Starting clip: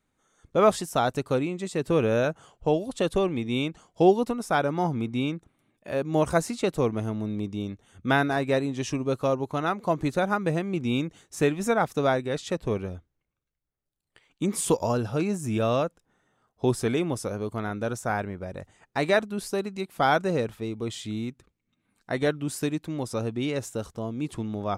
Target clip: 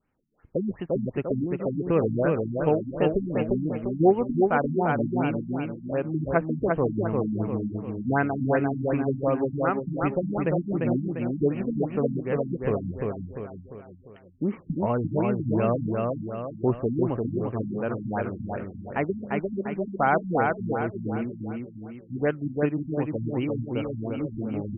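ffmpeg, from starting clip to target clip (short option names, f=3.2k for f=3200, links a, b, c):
-filter_complex "[0:a]asplit=2[a][b];[b]aecho=0:1:347|694|1041|1388|1735|2082:0.708|0.34|0.163|0.0783|0.0376|0.018[c];[a][c]amix=inputs=2:normalize=0,afftfilt=real='re*lt(b*sr/1024,280*pow(3200/280,0.5+0.5*sin(2*PI*2.7*pts/sr)))':imag='im*lt(b*sr/1024,280*pow(3200/280,0.5+0.5*sin(2*PI*2.7*pts/sr)))':win_size=1024:overlap=0.75"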